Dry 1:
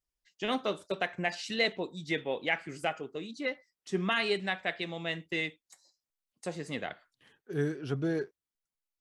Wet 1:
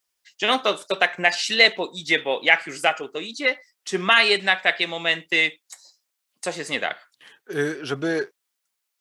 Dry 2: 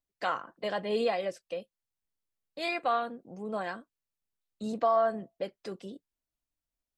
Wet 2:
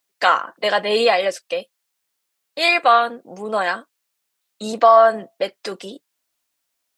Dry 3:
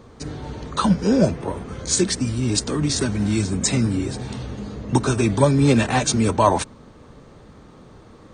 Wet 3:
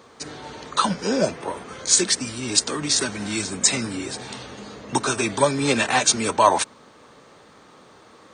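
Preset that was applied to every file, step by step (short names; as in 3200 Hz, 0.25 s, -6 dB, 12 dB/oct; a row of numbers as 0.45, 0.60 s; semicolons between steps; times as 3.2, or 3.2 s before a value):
HPF 920 Hz 6 dB/oct; normalise peaks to -1.5 dBFS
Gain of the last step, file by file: +15.0, +18.0, +4.5 dB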